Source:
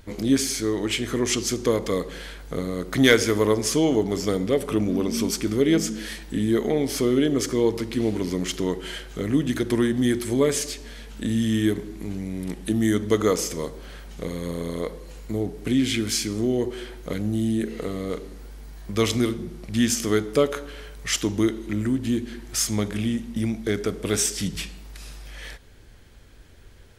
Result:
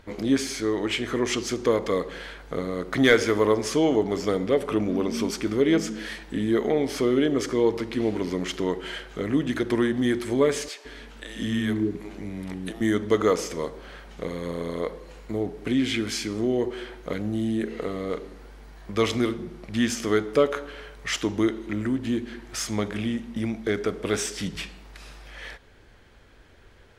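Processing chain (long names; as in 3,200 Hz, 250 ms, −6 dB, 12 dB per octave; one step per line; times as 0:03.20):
mid-hump overdrive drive 9 dB, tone 1,600 Hz, clips at −4.5 dBFS
0:10.68–0:12.81: multiband delay without the direct sound highs, lows 170 ms, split 450 Hz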